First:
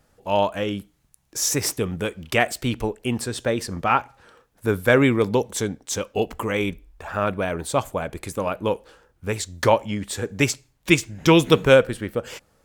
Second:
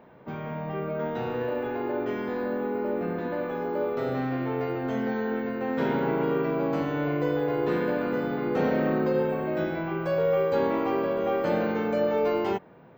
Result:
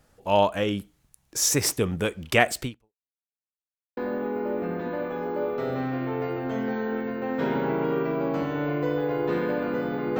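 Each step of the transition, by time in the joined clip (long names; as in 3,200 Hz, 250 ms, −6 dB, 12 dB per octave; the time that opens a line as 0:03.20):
first
0:02.63–0:03.13: fade out exponential
0:03.13–0:03.97: silence
0:03.97: continue with second from 0:02.36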